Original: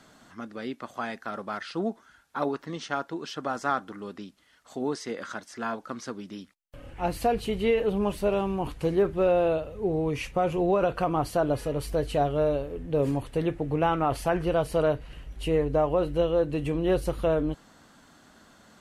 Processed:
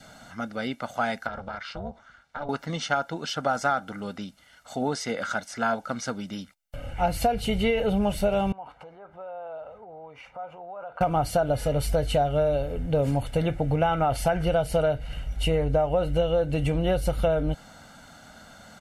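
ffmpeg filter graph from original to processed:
ffmpeg -i in.wav -filter_complex "[0:a]asettb=1/sr,asplit=3[link_01][link_02][link_03];[link_01]atrim=end=1.274[link_04];[link_02]atrim=start=1.27:end=2.49,asetpts=PTS-STARTPTS,afade=type=in:duration=0.004:curve=qsin,afade=type=out:start_time=1.216:duration=0.004:curve=qsin,lowpass=5200,tremolo=f=290:d=0.947,acompressor=threshold=-38dB:ratio=3:attack=3.2:release=140:knee=1:detection=peak[link_05];[link_03]atrim=start=2.486[link_06];[link_04][link_05]acrossfade=duration=0.004:curve1=hsin:curve2=qsin[link_07];[link_07][link_06]acrossfade=duration=0.004:curve1=qsin:curve2=hsin,asettb=1/sr,asplit=3[link_08][link_09][link_10];[link_08]atrim=end=8.524[link_11];[link_09]atrim=start=8.52:end=11.01,asetpts=PTS-STARTPTS,afade=type=in:duration=0.004:curve=qsin,afade=type=out:start_time=2.486:duration=0.004:curve=qsin,acompressor=threshold=-35dB:ratio=12:attack=3.2:release=140:knee=1:detection=peak,bandpass=frequency=960:width_type=q:width=1.8[link_12];[link_10]atrim=start=11.006[link_13];[link_11][link_12]acrossfade=duration=0.004:curve1=hsin:curve2=qsin[link_14];[link_14][link_13]acrossfade=duration=0.004:curve1=qsin:curve2=hsin,adynamicequalizer=threshold=0.00562:dfrequency=1100:dqfactor=2.6:tfrequency=1100:tqfactor=2.6:attack=5:release=100:ratio=0.375:range=2.5:mode=cutabove:tftype=bell,aecho=1:1:1.4:0.64,acompressor=threshold=-25dB:ratio=6,volume=5.5dB" out.wav

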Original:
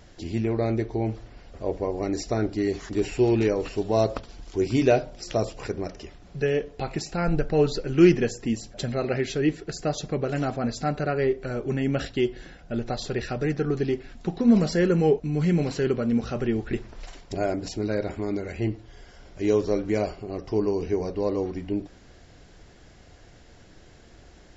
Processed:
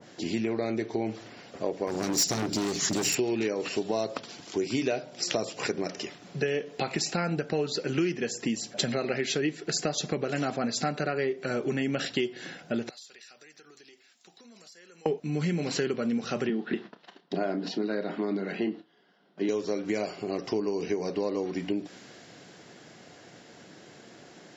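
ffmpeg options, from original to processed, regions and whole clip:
ffmpeg -i in.wav -filter_complex "[0:a]asettb=1/sr,asplit=3[link_01][link_02][link_03];[link_01]atrim=end=1.874[link_04];[link_02]atrim=start=1.87:end=3.15,asetpts=PTS-STARTPTS,afade=type=in:duration=0.004:curve=qsin,afade=type=out:start_time=1.276:duration=0.004:curve=qsin,bass=frequency=250:gain=12,treble=frequency=4000:gain=15,asoftclip=type=hard:threshold=-23dB[link_05];[link_03]atrim=start=3.146[link_06];[link_04][link_05]acrossfade=duration=0.004:curve1=hsin:curve2=qsin[link_07];[link_07][link_06]acrossfade=duration=0.004:curve1=qsin:curve2=hsin,asettb=1/sr,asplit=3[link_08][link_09][link_10];[link_08]atrim=end=12.894[link_11];[link_09]atrim=start=12.89:end=15.06,asetpts=PTS-STARTPTS,afade=type=in:duration=0.004:curve=qsin,afade=type=out:start_time=2.166:duration=0.004:curve=qsin,aderivative,acompressor=threshold=-49dB:ratio=6:attack=3.2:release=140:knee=1:detection=peak,aeval=exprs='(tanh(25.1*val(0)+0.75)-tanh(0.75))/25.1':channel_layout=same[link_12];[link_10]atrim=start=15.056[link_13];[link_11][link_12]acrossfade=duration=0.004:curve1=hsin:curve2=qsin[link_14];[link_14][link_13]acrossfade=duration=0.004:curve1=qsin:curve2=hsin,asettb=1/sr,asplit=3[link_15][link_16][link_17];[link_15]atrim=end=16.494[link_18];[link_16]atrim=start=16.49:end=19.49,asetpts=PTS-STARTPTS,afade=type=in:duration=0.004:curve=qsin,afade=type=out:start_time=2.996:duration=0.004:curve=qsin,highpass=frequency=170:width=0.5412,highpass=frequency=170:width=1.3066,equalizer=frequency=180:width_type=q:width=4:gain=6,equalizer=frequency=540:width_type=q:width=4:gain=-4,equalizer=frequency=2300:width_type=q:width=4:gain=-10,lowpass=frequency=3900:width=0.5412,lowpass=frequency=3900:width=1.3066,agate=range=-16dB:threshold=-48dB:ratio=16:release=100:detection=peak,asplit=2[link_19][link_20];[link_20]adelay=31,volume=-12dB[link_21];[link_19][link_21]amix=inputs=2:normalize=0,atrim=end_sample=132300[link_22];[link_17]atrim=start=19.486[link_23];[link_18][link_22]acrossfade=duration=0.004:curve1=hsin:curve2=qsin[link_24];[link_24][link_23]acrossfade=duration=0.004:curve1=qsin:curve2=hsin,highpass=frequency=150:width=0.5412,highpass=frequency=150:width=1.3066,acompressor=threshold=-30dB:ratio=6,adynamicequalizer=threshold=0.00355:dfrequency=1500:dqfactor=0.7:tfrequency=1500:tqfactor=0.7:attack=5:release=100:ratio=0.375:range=3:mode=boostabove:tftype=highshelf,volume=4dB" out.wav

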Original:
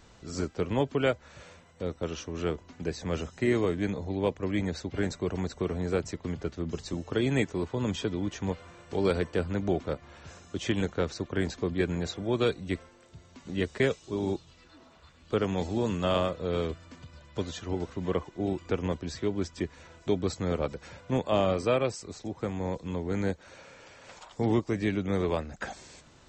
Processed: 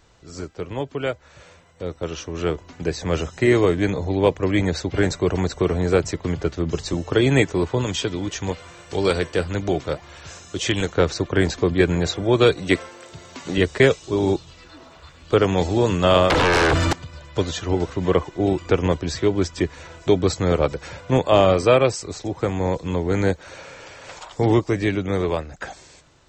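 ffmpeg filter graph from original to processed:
ffmpeg -i in.wav -filter_complex "[0:a]asettb=1/sr,asplit=3[link_01][link_02][link_03];[link_01]atrim=end=7.814[link_04];[link_02]atrim=start=7.81:end=10.94,asetpts=PTS-STARTPTS,afade=type=in:duration=0.004:curve=qsin,afade=type=out:start_time=3.126:duration=0.004:curve=qsin,highshelf=frequency=2500:gain=8,flanger=delay=0.3:depth=7.9:regen=84:speed=1.7:shape=sinusoidal[link_05];[link_03]atrim=start=10.936[link_06];[link_04][link_05]acrossfade=duration=0.004:curve1=hsin:curve2=qsin[link_07];[link_07][link_06]acrossfade=duration=0.004:curve1=qsin:curve2=hsin,asettb=1/sr,asplit=3[link_08][link_09][link_10];[link_08]atrim=end=12.574[link_11];[link_09]atrim=start=12.57:end=13.58,asetpts=PTS-STARTPTS,afade=type=in:duration=0.004:curve=qsin,afade=type=out:start_time=1.006:duration=0.004:curve=qsin,highpass=frequency=290:poles=1,acontrast=42[link_12];[link_10]atrim=start=13.576[link_13];[link_11][link_12]acrossfade=duration=0.004:curve1=hsin:curve2=qsin[link_14];[link_14][link_13]acrossfade=duration=0.004:curve1=qsin:curve2=hsin,asettb=1/sr,asplit=3[link_15][link_16][link_17];[link_15]atrim=end=16.304[link_18];[link_16]atrim=start=16.3:end=16.93,asetpts=PTS-STARTPTS,afade=type=in:duration=0.004:curve=qsin,afade=type=out:start_time=0.626:duration=0.004:curve=qsin,equalizer=frequency=290:width_type=o:width=0.41:gain=10.5,acompressor=threshold=-33dB:ratio=10:attack=3.2:release=140:knee=1:detection=peak,aeval=exprs='0.0596*sin(PI/2*7.94*val(0)/0.0596)':channel_layout=same[link_19];[link_17]atrim=start=16.926[link_20];[link_18][link_19]acrossfade=duration=0.004:curve1=hsin:curve2=qsin[link_21];[link_21][link_20]acrossfade=duration=0.004:curve1=qsin:curve2=hsin,equalizer=frequency=220:width=4.4:gain=-9.5,dynaudnorm=framelen=880:gausssize=5:maxgain=12.5dB" out.wav

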